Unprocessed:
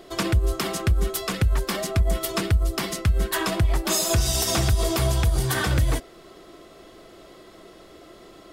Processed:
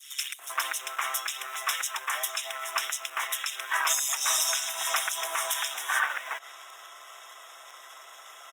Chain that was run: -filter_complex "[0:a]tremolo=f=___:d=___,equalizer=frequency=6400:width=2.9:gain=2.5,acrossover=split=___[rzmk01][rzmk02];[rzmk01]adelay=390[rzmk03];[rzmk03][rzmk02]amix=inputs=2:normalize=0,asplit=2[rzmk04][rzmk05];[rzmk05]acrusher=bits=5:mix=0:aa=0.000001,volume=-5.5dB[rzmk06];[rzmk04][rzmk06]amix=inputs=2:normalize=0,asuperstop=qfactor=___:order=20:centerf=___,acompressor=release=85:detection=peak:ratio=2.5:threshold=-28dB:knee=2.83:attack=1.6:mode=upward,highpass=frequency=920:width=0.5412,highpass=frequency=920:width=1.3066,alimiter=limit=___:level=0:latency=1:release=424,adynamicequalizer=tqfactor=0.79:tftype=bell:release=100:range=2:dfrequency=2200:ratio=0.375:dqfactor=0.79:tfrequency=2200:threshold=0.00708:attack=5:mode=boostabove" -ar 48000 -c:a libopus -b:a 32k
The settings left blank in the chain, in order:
140, 0.571, 2500, 3.4, 4500, -15dB